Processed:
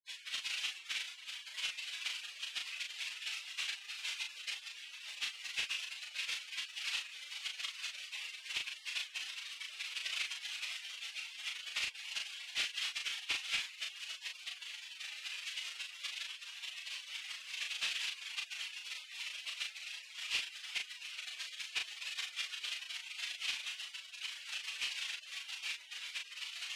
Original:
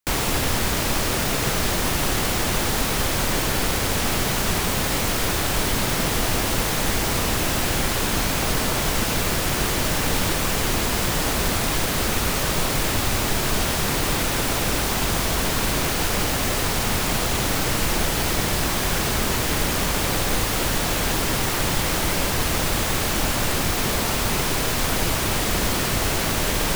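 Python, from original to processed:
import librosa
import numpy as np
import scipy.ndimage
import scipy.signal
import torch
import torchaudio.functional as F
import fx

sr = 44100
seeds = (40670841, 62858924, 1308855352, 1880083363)

y = fx.spec_gate(x, sr, threshold_db=-30, keep='weak')
y = fx.bandpass_q(y, sr, hz=2700.0, q=2.7)
y = np.clip(y, -10.0 ** (-39.5 / 20.0), 10.0 ** (-39.5 / 20.0))
y = fx.air_absorb(y, sr, metres=65.0)
y = fx.doubler(y, sr, ms=37.0, db=-4)
y = y * 10.0 ** (12.0 / 20.0)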